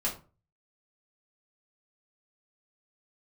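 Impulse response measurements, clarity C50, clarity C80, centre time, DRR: 10.0 dB, 16.0 dB, 21 ms, -5.5 dB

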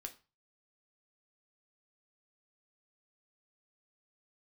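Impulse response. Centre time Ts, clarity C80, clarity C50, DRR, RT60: 7 ms, 21.5 dB, 15.0 dB, 4.5 dB, 0.30 s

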